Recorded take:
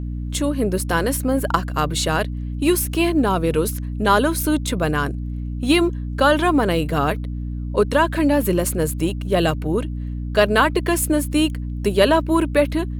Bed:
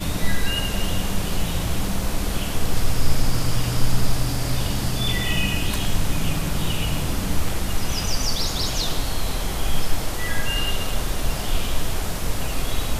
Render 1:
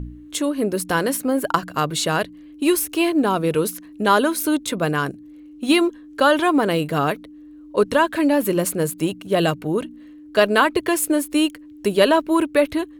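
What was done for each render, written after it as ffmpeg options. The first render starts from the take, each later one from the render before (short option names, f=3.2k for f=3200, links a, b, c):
-af "bandreject=f=60:t=h:w=4,bandreject=f=120:t=h:w=4,bandreject=f=180:t=h:w=4,bandreject=f=240:t=h:w=4"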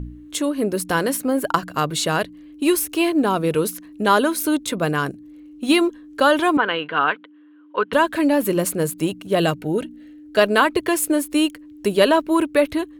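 -filter_complex "[0:a]asettb=1/sr,asplit=3[a][b][c];[a]atrim=end=6.574[d];[b]atrim=start=6.57:end=7.93,asetpts=PTS-STARTPTS,afade=t=in:d=0.004:c=qsin,afade=t=out:st=1.356:d=0.004:c=qsin,highpass=370,equalizer=f=370:t=q:w=4:g=-6,equalizer=f=620:t=q:w=4:g=-8,equalizer=f=1k:t=q:w=4:g=5,equalizer=f=1.5k:t=q:w=4:g=10,equalizer=f=3.1k:t=q:w=4:g=8,lowpass=f=3.2k:w=0.5412,lowpass=f=3.2k:w=1.3066[e];[c]atrim=start=7.926[f];[d][e]acrossfade=d=0.004:c1=hsin:c2=qsin[g];[g][f]acrossfade=d=0.004:c1=qsin:c2=hsin,asettb=1/sr,asplit=3[h][i][j];[h]atrim=end=9.604[k];[i]atrim=start=9.6:end=10.37,asetpts=PTS-STARTPTS,afade=t=in:d=0.004:c=qsin,afade=t=out:st=0.766:d=0.004:c=qsin,asuperstop=centerf=1100:order=8:qfactor=3.8[l];[j]atrim=start=10.366[m];[k][l]acrossfade=d=0.004:c1=hsin:c2=qsin[n];[n][m]acrossfade=d=0.004:c1=qsin:c2=hsin"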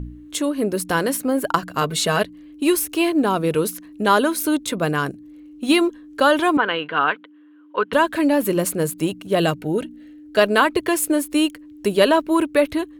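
-filter_complex "[0:a]asettb=1/sr,asplit=3[a][b][c];[a]atrim=end=1.814[d];[b]atrim=start=1.81:end=2.24,asetpts=PTS-STARTPTS,afade=t=in:d=0.004:c=qsin,afade=t=out:st=0.426:d=0.004:c=qsin,aecho=1:1:4.6:0.64,atrim=end_sample=18963[e];[c]atrim=start=2.236[f];[d][e]acrossfade=d=0.004:c1=hsin:c2=qsin[g];[g][f]acrossfade=d=0.004:c1=qsin:c2=hsin"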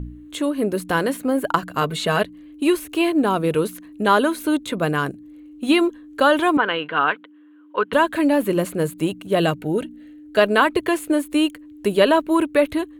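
-filter_complex "[0:a]acrossover=split=4600[a][b];[b]acompressor=threshold=-34dB:ratio=4:attack=1:release=60[c];[a][c]amix=inputs=2:normalize=0,equalizer=f=5.3k:w=3.3:g=-7.5"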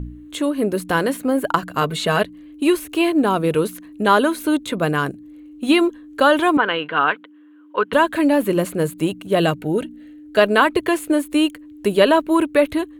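-af "volume=1.5dB,alimiter=limit=-1dB:level=0:latency=1"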